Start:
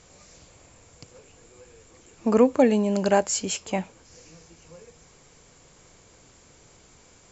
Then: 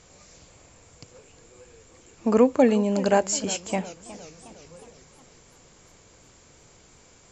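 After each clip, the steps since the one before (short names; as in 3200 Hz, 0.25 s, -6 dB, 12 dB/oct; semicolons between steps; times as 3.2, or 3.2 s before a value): warbling echo 0.363 s, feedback 54%, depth 145 cents, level -17 dB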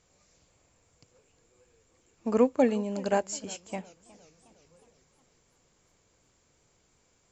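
upward expander 1.5:1, over -33 dBFS; gain -4 dB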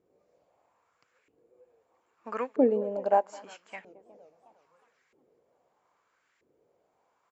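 speakerphone echo 0.22 s, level -19 dB; LFO band-pass saw up 0.78 Hz 340–2000 Hz; gain +6.5 dB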